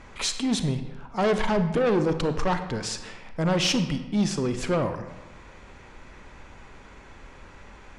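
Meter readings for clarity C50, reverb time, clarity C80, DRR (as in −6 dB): 10.0 dB, 1.3 s, 11.5 dB, 8.5 dB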